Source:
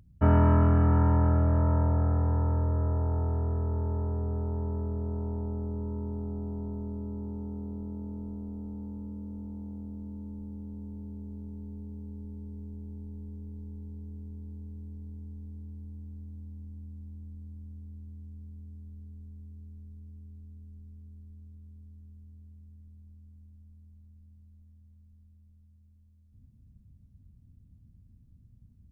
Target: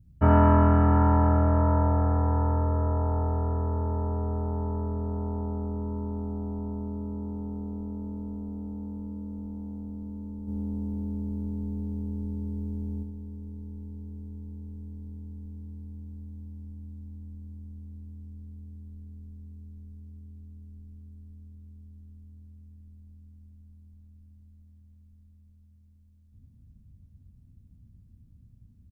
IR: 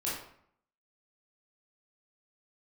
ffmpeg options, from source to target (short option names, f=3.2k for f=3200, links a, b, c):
-filter_complex "[0:a]adynamicequalizer=threshold=0.00316:dfrequency=1000:dqfactor=1.4:tfrequency=1000:tqfactor=1.4:attack=5:release=100:ratio=0.375:range=2.5:mode=boostabove:tftype=bell,asplit=3[a][b][c];[a]afade=t=out:st=10.47:d=0.02[d];[b]acontrast=64,afade=t=in:st=10.47:d=0.02,afade=t=out:st=13.02:d=0.02[e];[c]afade=t=in:st=13.02:d=0.02[f];[d][e][f]amix=inputs=3:normalize=0,aecho=1:1:77:0.447,volume=1.5dB"